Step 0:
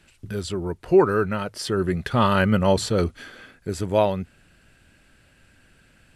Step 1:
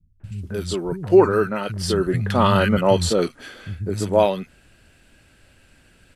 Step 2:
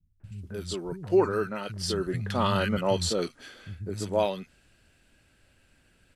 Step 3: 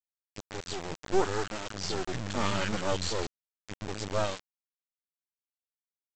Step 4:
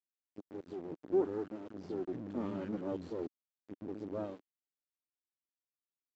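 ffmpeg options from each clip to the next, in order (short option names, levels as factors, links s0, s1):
-filter_complex "[0:a]acrossover=split=170|1500[s0][s1][s2];[s1]adelay=200[s3];[s2]adelay=240[s4];[s0][s3][s4]amix=inputs=3:normalize=0,volume=1.5"
-af "adynamicequalizer=threshold=0.00891:dfrequency=5300:dqfactor=0.76:tfrequency=5300:tqfactor=0.76:attack=5:release=100:ratio=0.375:range=3:mode=boostabove:tftype=bell,volume=0.355"
-af "highpass=f=68:p=1,aresample=16000,acrusher=bits=3:dc=4:mix=0:aa=0.000001,aresample=44100"
-af "bandpass=f=300:t=q:w=2.4:csg=0,volume=1.19"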